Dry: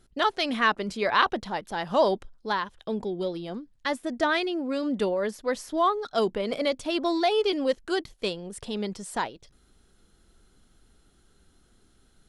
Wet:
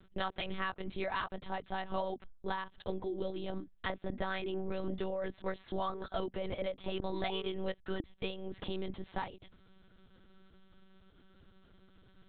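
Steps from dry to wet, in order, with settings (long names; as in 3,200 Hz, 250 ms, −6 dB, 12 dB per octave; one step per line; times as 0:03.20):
downward compressor 6 to 1, threshold −34 dBFS, peak gain reduction 17 dB
one-pitch LPC vocoder at 8 kHz 190 Hz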